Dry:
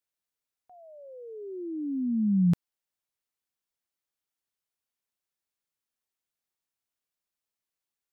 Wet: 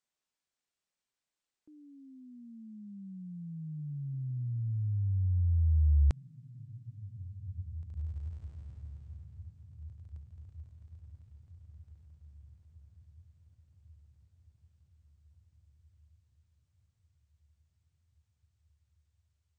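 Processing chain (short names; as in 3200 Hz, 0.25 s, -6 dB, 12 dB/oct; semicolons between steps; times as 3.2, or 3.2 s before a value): diffused feedback echo 0.968 s, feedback 42%, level -13 dB; wide varispeed 0.415×; gain -2.5 dB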